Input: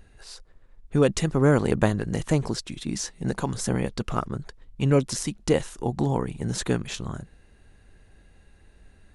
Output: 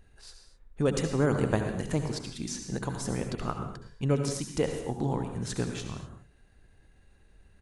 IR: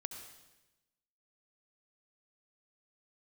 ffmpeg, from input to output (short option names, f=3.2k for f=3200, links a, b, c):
-filter_complex "[0:a]atempo=1.2[a];[1:a]atrim=start_sample=2205,afade=t=out:st=0.31:d=0.01,atrim=end_sample=14112[b];[a][b]afir=irnorm=-1:irlink=0,volume=-3dB"